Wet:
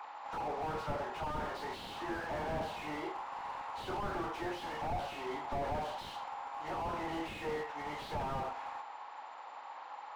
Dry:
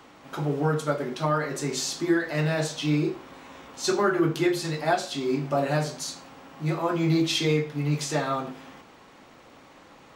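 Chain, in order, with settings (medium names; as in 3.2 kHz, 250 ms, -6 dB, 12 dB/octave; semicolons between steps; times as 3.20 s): knee-point frequency compression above 1.5 kHz 1.5:1; resonant high-pass 860 Hz, resonance Q 5.2; slew-rate limiter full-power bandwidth 16 Hz; trim -2 dB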